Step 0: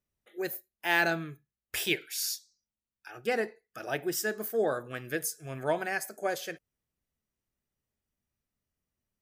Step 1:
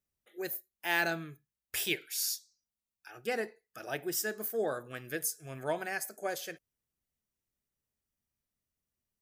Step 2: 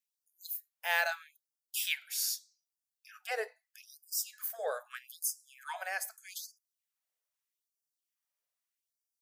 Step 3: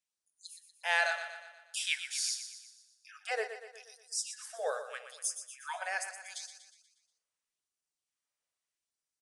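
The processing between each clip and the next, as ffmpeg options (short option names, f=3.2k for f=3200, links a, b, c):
-af "highshelf=f=5.1k:g=6,volume=-4.5dB"
-af "afftfilt=real='re*gte(b*sr/1024,420*pow(4700/420,0.5+0.5*sin(2*PI*0.8*pts/sr)))':imag='im*gte(b*sr/1024,420*pow(4700/420,0.5+0.5*sin(2*PI*0.8*pts/sr)))':win_size=1024:overlap=0.75"
-filter_complex "[0:a]aresample=22050,aresample=44100,asplit=2[a][b];[b]aecho=0:1:120|240|360|480|600|720:0.316|0.164|0.0855|0.0445|0.0231|0.012[c];[a][c]amix=inputs=2:normalize=0,volume=1dB"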